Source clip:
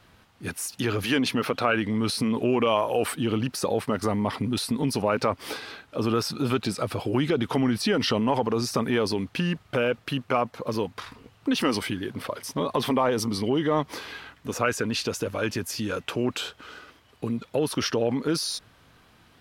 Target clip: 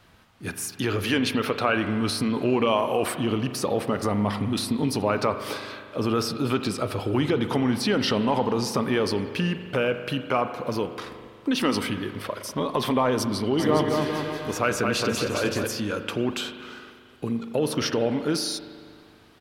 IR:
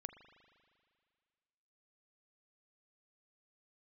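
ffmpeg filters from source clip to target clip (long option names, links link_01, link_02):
-filter_complex "[0:a]asplit=3[link_01][link_02][link_03];[link_01]afade=type=out:start_time=13.58:duration=0.02[link_04];[link_02]aecho=1:1:220|407|566|701.1|815.9:0.631|0.398|0.251|0.158|0.1,afade=type=in:start_time=13.58:duration=0.02,afade=type=out:start_time=15.66:duration=0.02[link_05];[link_03]afade=type=in:start_time=15.66:duration=0.02[link_06];[link_04][link_05][link_06]amix=inputs=3:normalize=0[link_07];[1:a]atrim=start_sample=2205[link_08];[link_07][link_08]afir=irnorm=-1:irlink=0,volume=5.5dB"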